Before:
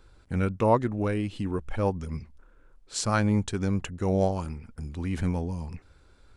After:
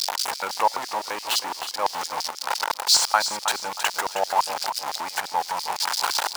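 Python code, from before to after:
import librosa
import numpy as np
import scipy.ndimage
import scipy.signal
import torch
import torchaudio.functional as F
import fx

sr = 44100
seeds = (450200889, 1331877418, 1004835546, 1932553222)

p1 = x + 0.5 * 10.0 ** (-26.5 / 20.0) * np.sign(x)
p2 = fx.over_compress(p1, sr, threshold_db=-30.0, ratio=-0.5)
p3 = p1 + (p2 * librosa.db_to_amplitude(1.5))
p4 = fx.filter_lfo_highpass(p3, sr, shape='square', hz=5.9, low_hz=860.0, high_hz=4800.0, q=4.5)
y = fx.echo_feedback(p4, sr, ms=316, feedback_pct=29, wet_db=-10.0)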